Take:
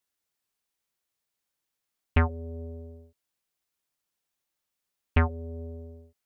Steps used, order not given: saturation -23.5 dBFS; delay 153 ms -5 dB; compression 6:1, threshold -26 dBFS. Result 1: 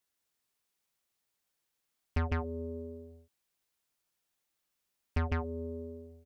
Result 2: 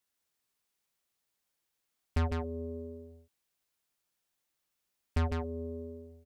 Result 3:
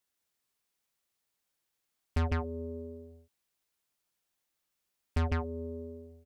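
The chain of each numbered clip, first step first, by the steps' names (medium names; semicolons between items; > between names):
delay > compression > saturation; saturation > delay > compression; delay > saturation > compression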